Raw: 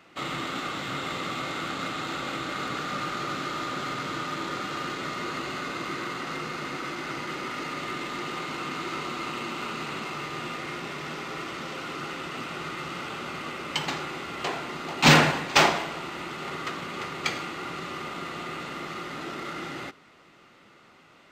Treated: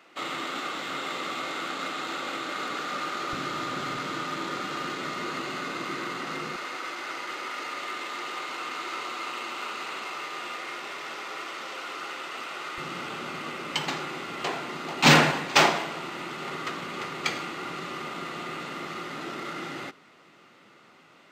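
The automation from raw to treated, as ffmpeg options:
-af "asetnsamples=n=441:p=0,asendcmd='3.33 highpass f 72;3.97 highpass f 150;6.56 highpass f 490;12.78 highpass f 130',highpass=290"

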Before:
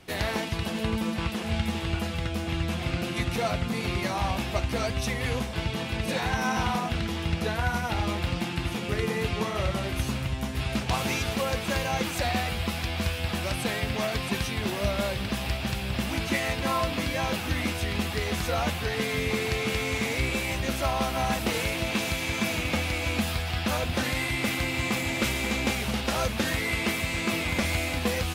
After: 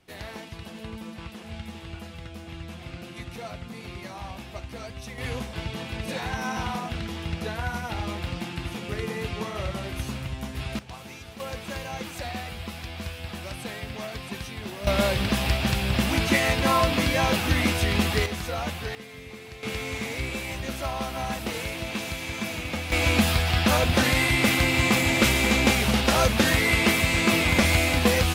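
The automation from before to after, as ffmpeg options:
-af "asetnsamples=n=441:p=0,asendcmd='5.18 volume volume -3dB;10.79 volume volume -14dB;11.4 volume volume -6.5dB;14.87 volume volume 5.5dB;18.26 volume volume -3dB;18.95 volume volume -14.5dB;19.63 volume volume -3.5dB;22.92 volume volume 6.5dB',volume=-10dB"

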